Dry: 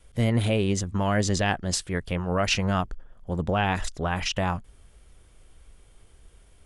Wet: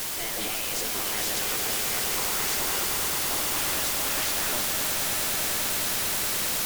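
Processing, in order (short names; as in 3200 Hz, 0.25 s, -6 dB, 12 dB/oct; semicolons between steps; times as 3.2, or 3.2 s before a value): reverse; compressor 6:1, threshold -38 dBFS, peak gain reduction 18 dB; reverse; spectral gate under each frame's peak -15 dB weak; requantised 8-bit, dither triangular; sine folder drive 12 dB, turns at -30 dBFS; on a send: swelling echo 0.106 s, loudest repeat 8, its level -10 dB; on the sum: gain +4 dB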